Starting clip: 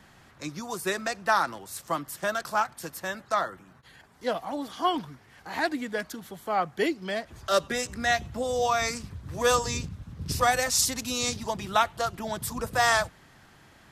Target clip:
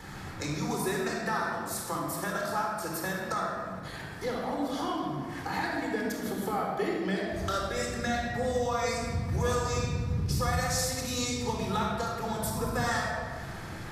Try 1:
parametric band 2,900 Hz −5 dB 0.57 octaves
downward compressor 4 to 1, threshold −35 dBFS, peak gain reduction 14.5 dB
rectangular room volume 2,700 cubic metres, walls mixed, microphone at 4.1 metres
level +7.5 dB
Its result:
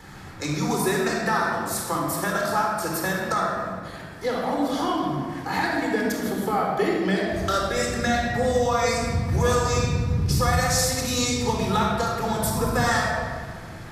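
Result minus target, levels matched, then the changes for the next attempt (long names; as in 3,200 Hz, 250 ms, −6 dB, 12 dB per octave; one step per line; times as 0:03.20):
downward compressor: peak gain reduction −7.5 dB
change: downward compressor 4 to 1, threshold −45 dBFS, peak gain reduction 22 dB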